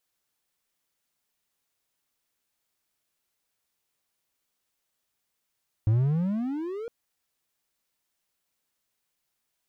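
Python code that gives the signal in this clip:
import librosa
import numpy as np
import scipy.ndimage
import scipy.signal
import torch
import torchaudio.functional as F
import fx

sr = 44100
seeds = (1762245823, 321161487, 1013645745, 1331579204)

y = fx.riser_tone(sr, length_s=1.01, level_db=-16.0, wave='triangle', hz=104.0, rise_st=26.5, swell_db=-15)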